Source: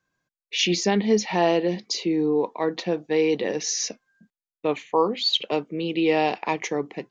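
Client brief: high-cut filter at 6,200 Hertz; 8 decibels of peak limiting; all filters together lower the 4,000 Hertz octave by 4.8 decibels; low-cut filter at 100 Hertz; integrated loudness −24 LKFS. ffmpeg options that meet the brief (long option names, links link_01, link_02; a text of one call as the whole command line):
ffmpeg -i in.wav -af "highpass=100,lowpass=6200,equalizer=frequency=4000:width_type=o:gain=-5.5,volume=3.5dB,alimiter=limit=-13.5dB:level=0:latency=1" out.wav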